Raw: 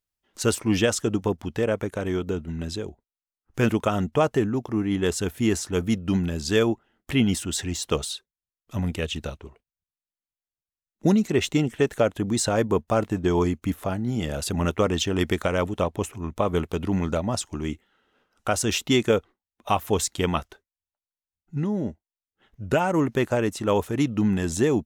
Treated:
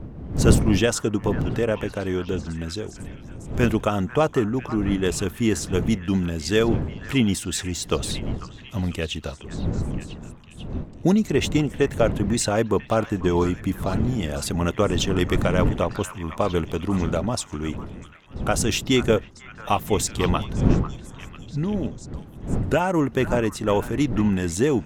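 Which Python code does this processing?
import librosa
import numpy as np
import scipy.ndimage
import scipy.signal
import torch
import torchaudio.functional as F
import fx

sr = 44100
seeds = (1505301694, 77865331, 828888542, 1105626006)

y = fx.dmg_wind(x, sr, seeds[0], corner_hz=190.0, level_db=-30.0)
y = fx.echo_stepped(y, sr, ms=496, hz=1300.0, octaves=0.7, feedback_pct=70, wet_db=-9)
y = y * 10.0 ** (1.0 / 20.0)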